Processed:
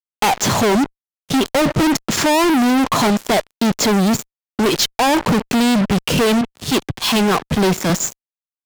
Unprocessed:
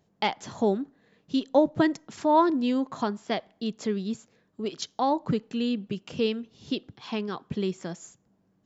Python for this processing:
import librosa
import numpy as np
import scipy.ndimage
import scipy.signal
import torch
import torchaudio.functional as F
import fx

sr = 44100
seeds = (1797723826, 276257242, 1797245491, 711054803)

y = fx.fuzz(x, sr, gain_db=49.0, gate_db=-48.0)
y = fx.band_widen(y, sr, depth_pct=70, at=(6.41, 7.9))